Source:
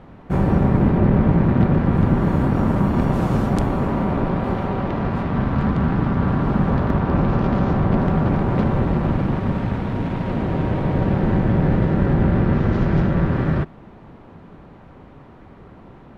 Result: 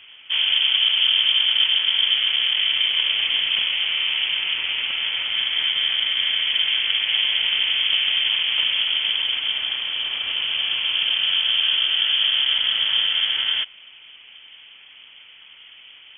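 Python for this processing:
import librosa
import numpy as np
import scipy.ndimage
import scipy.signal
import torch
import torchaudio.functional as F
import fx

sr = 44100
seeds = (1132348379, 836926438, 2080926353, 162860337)

y = fx.low_shelf(x, sr, hz=150.0, db=-8.0)
y = fx.freq_invert(y, sr, carrier_hz=3300)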